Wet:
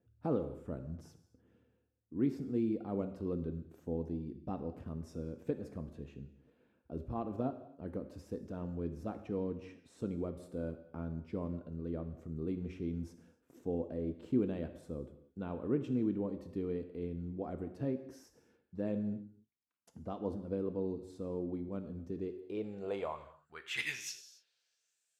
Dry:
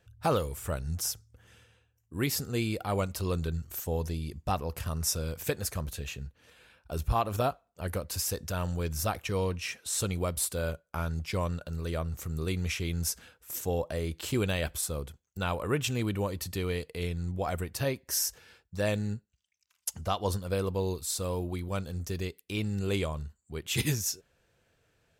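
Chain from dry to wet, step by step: gated-style reverb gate 310 ms falling, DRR 8 dB; band-pass sweep 270 Hz -> 7.9 kHz, 22.12–25.04 s; trim +2.5 dB

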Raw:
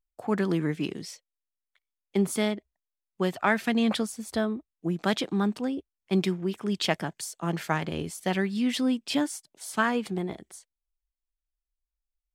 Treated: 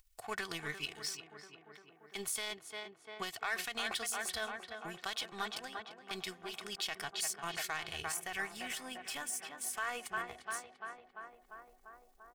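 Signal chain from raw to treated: amplifier tone stack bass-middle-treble 10-0-10; power-law waveshaper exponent 1.4; comb 2.7 ms, depth 57%; upward compressor, threshold -53 dBFS; tape echo 345 ms, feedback 82%, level -10 dB, low-pass 1.9 kHz; peak limiter -36 dBFS, peak gain reduction 19 dB; 8.14–10.39 s: peaking EQ 4.1 kHz -10.5 dB 0.86 oct; trim +11 dB

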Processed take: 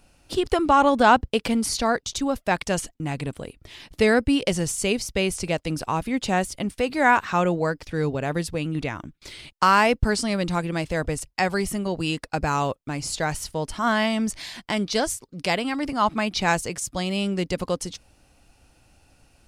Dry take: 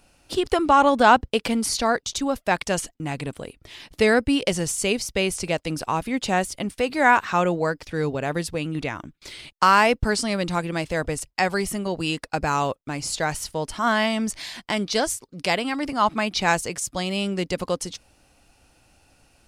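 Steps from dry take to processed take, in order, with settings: bass shelf 220 Hz +5 dB; trim -1.5 dB

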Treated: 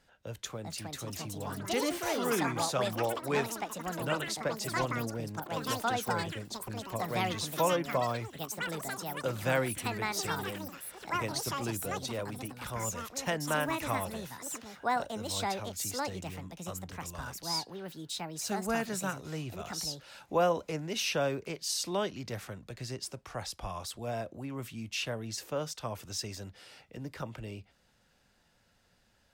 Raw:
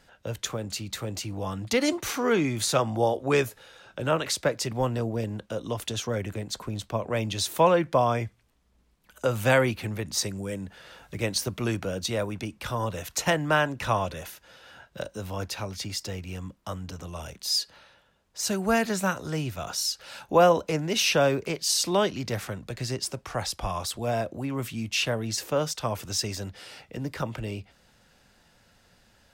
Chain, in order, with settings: ever faster or slower copies 470 ms, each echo +6 st, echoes 3; trim -8.5 dB

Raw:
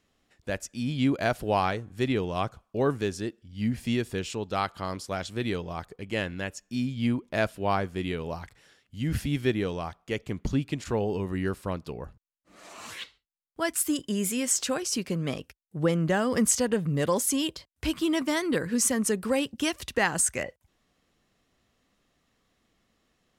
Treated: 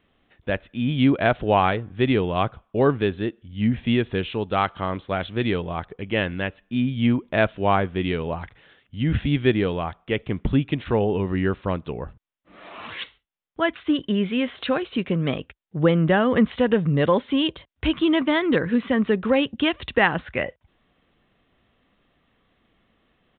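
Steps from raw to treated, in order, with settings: resampled via 8 kHz; trim +6.5 dB

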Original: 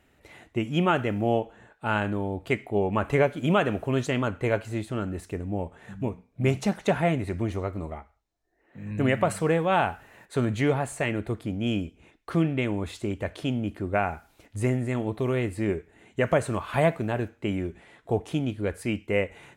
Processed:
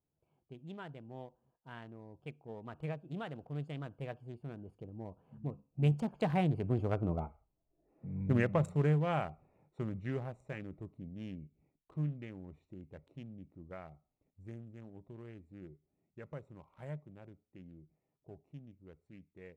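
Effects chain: local Wiener filter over 25 samples; Doppler pass-by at 7.40 s, 33 m/s, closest 12 m; peaking EQ 150 Hz +11.5 dB 0.33 oct; trim +1.5 dB

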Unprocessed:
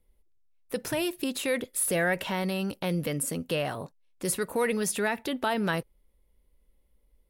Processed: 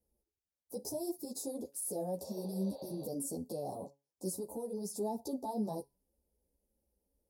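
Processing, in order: elliptic band-stop 820–5000 Hz, stop band 40 dB; 2.27–3.03 s: spectral replace 420–4700 Hz before; high-pass 71 Hz 12 dB/octave; peaking EQ 120 Hz -8 dB 0.67 oct; peak limiter -26.5 dBFS, peak gain reduction 10 dB; 4.35–4.99 s: compression, threshold -34 dBFS, peak gain reduction 4.5 dB; feedback comb 140 Hz, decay 0.28 s, harmonics all, mix 40%; 1.66–3.00 s: crackle 59 per s -59 dBFS; three-phase chorus; trim +3 dB

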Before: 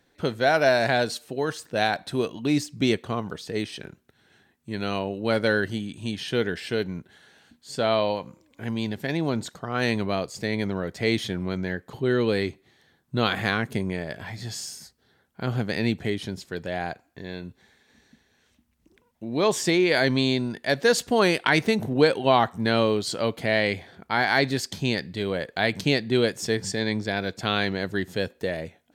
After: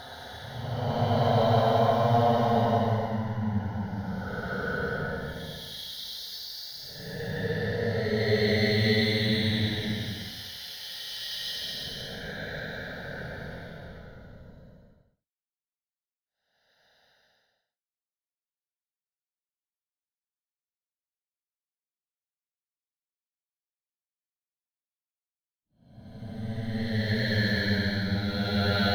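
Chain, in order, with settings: crossover distortion -43 dBFS; static phaser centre 1.7 kHz, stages 8; Paulstretch 16×, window 0.10 s, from 3.03 s; trim +9 dB

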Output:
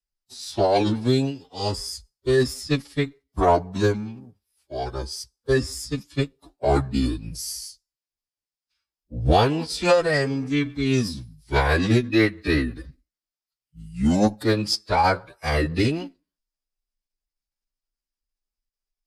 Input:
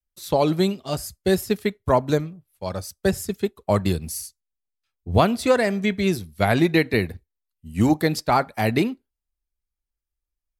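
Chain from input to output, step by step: Chebyshev shaper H 6 -41 dB, 7 -44 dB, 8 -32 dB, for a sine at -2.5 dBFS; time stretch by phase-locked vocoder 1.8×; graphic EQ with 31 bands 250 Hz -4 dB, 5 kHz +10 dB, 12.5 kHz -7 dB; formant-preserving pitch shift -6.5 st

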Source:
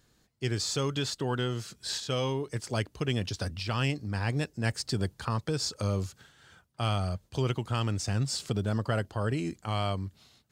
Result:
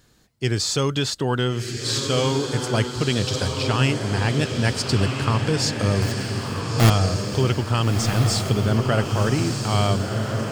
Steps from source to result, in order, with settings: 6.02–6.90 s: square wave that keeps the level; echo that smears into a reverb 1375 ms, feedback 50%, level -4 dB; trim +8 dB

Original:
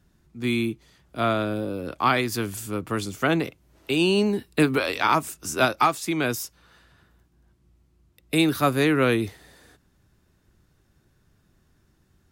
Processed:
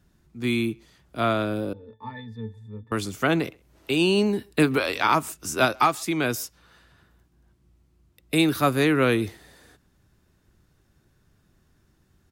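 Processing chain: 1.73–2.92 s: pitch-class resonator A, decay 0.19 s; speakerphone echo 130 ms, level -27 dB

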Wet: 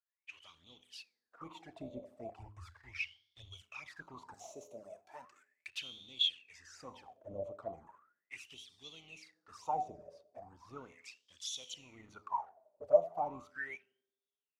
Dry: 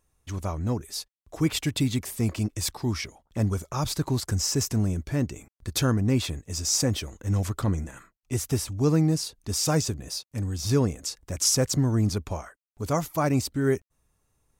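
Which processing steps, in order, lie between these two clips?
octave divider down 2 oct, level -4 dB; harmonic tremolo 1.5 Hz, depth 50%, crossover 510 Hz; feedback comb 84 Hz, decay 0.88 s, harmonics all, mix 60%; 4.34–5.68 s: tilt EQ +4.5 dB/octave; waveshaping leveller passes 2; touch-sensitive flanger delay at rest 6.4 ms, full sweep at -23 dBFS; de-hum 104.5 Hz, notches 4; 2.39–3.62 s: resonant low shelf 130 Hz +13.5 dB, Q 3; tape echo 84 ms, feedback 66%, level -20 dB, low-pass 1.4 kHz; wah-wah 0.37 Hz 580–3500 Hz, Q 19; trim +11.5 dB

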